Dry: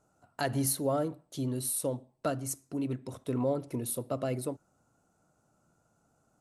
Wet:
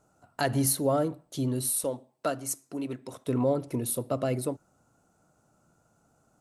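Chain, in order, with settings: 1.84–3.27 HPF 390 Hz 6 dB/oct; gain +4 dB

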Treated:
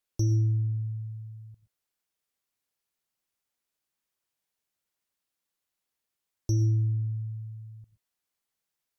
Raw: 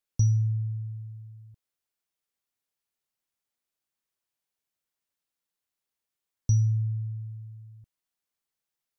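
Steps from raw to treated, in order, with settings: sine folder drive 5 dB, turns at -14.5 dBFS; non-linear reverb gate 0.14 s rising, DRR 11 dB; gain -7 dB

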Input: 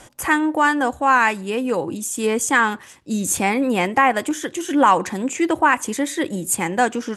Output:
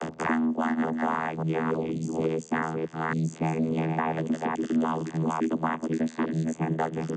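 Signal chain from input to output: reverse delay 0.284 s, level -5.5 dB; frequency shift -30 Hz; vocoder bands 16, saw 80.3 Hz; three-band squash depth 100%; gain -9 dB

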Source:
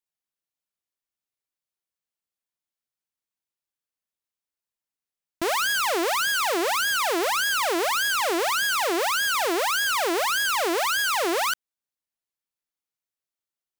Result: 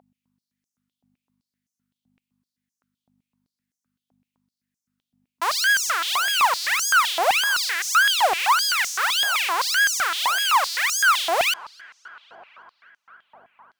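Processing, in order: darkening echo 0.272 s, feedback 84%, low-pass 4000 Hz, level -23 dB; hum 50 Hz, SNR 11 dB; stepped high-pass 7.8 Hz 740–6100 Hz

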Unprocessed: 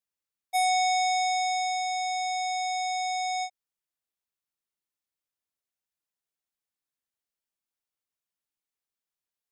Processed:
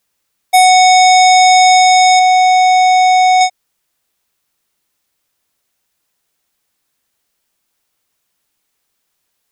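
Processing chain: 2.19–3.41 high shelf 3600 Hz -10.5 dB; maximiser +23 dB; gain -1 dB

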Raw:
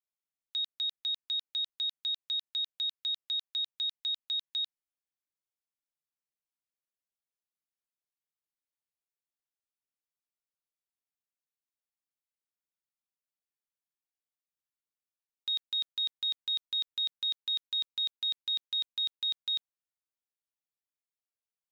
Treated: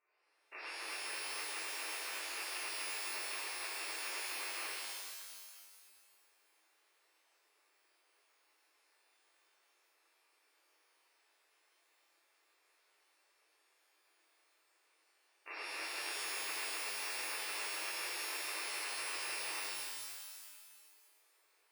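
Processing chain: stepped spectrum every 50 ms; brick-wall FIR band-pass 300–2800 Hz; shimmer reverb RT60 1.8 s, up +12 st, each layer -2 dB, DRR -11.5 dB; gain +16 dB

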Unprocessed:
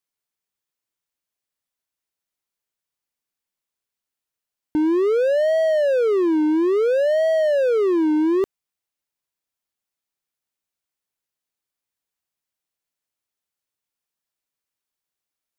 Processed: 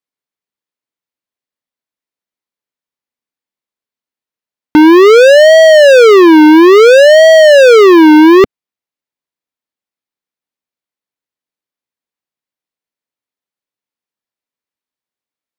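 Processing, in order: ten-band EQ 125 Hz +5 dB, 250 Hz +10 dB, 500 Hz +7 dB, 1000 Hz +6 dB, 2000 Hz +6 dB, 4000 Hz +5 dB; sample leveller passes 5; gain +1.5 dB

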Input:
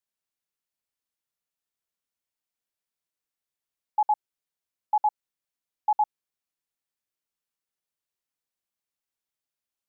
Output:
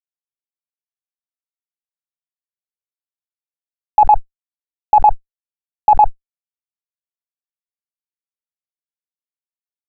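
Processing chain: fuzz box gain 51 dB, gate -48 dBFS; synth low-pass 760 Hz, resonance Q 4.9; fast leveller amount 100%; gain -3 dB

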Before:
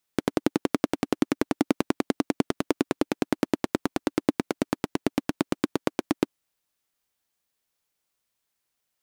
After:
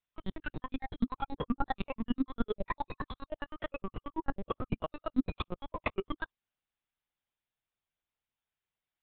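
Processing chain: in parallel at -8.5 dB: sine folder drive 13 dB, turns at -6 dBFS; on the sum: spectral noise reduction 18 dB; LPC vocoder at 8 kHz pitch kept; gain -1.5 dB

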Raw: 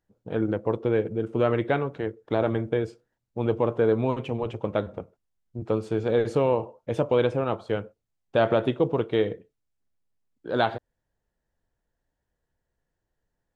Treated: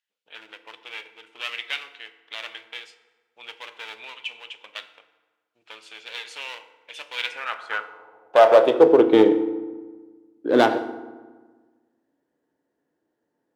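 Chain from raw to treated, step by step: one-sided clip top -26 dBFS, bottom -12 dBFS; FDN reverb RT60 1.4 s, low-frequency decay 1.25×, high-frequency decay 0.65×, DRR 9.5 dB; high-pass sweep 2800 Hz -> 290 Hz, 7.1–9.17; mismatched tape noise reduction decoder only; gain +6 dB

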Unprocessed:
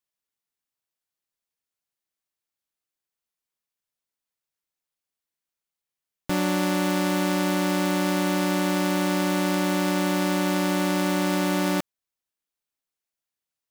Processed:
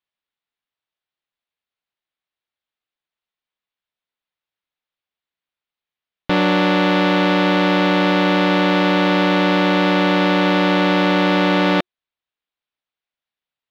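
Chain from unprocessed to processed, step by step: sample leveller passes 2; EQ curve 360 Hz 0 dB, 700 Hz +3 dB, 3700 Hz +5 dB, 8300 Hz -24 dB; gain +3.5 dB

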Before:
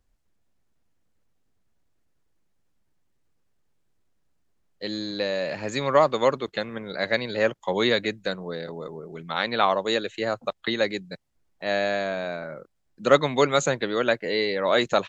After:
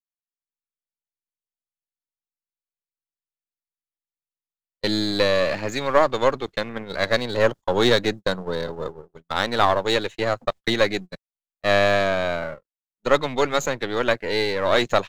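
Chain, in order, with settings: half-wave gain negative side -7 dB; 7.05–9.7 bell 2300 Hz -7 dB 0.53 oct; gate -37 dBFS, range -47 dB; AGC gain up to 12 dB; gain -1 dB

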